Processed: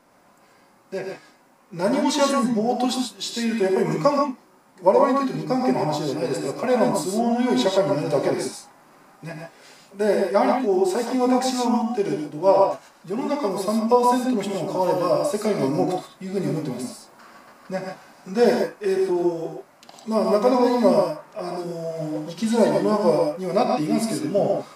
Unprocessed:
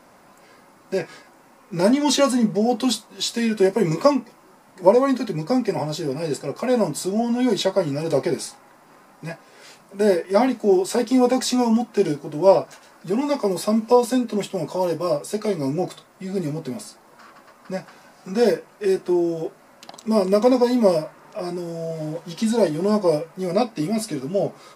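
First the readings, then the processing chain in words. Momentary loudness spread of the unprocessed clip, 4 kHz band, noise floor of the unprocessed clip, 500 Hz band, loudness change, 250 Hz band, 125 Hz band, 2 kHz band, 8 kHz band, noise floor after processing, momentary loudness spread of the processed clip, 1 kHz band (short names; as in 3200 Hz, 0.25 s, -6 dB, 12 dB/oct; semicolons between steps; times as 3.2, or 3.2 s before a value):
15 LU, -2.0 dB, -52 dBFS, -0.5 dB, -0.5 dB, -1.5 dB, -1.5 dB, +0.5 dB, -2.5 dB, -55 dBFS, 14 LU, +3.5 dB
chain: vocal rider within 3 dB 2 s; dynamic EQ 1100 Hz, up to +6 dB, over -32 dBFS, Q 0.75; non-linear reverb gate 0.16 s rising, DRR 2 dB; gain -4.5 dB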